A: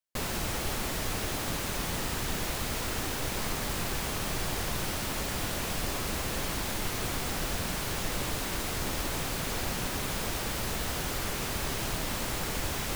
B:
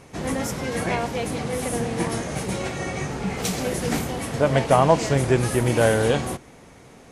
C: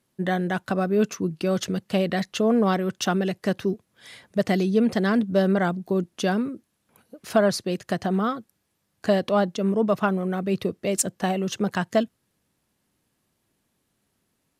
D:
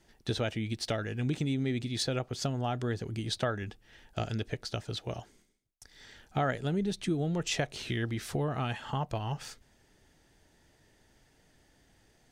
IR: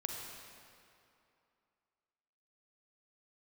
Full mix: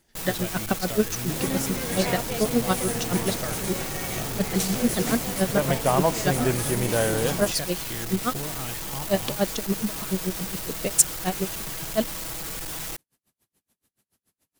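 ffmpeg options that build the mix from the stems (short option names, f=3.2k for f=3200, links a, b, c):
-filter_complex "[0:a]aecho=1:1:6.2:0.65,asoftclip=type=tanh:threshold=-32dB,volume=-1dB[a];[1:a]adelay=1150,volume=-5.5dB[b];[2:a]aeval=exprs='val(0)*pow(10,-33*(0.5-0.5*cos(2*PI*7*n/s))/20)':c=same,volume=2dB[c];[3:a]volume=-4dB[d];[a][b][c][d]amix=inputs=4:normalize=0,highshelf=f=6.1k:g=9.5"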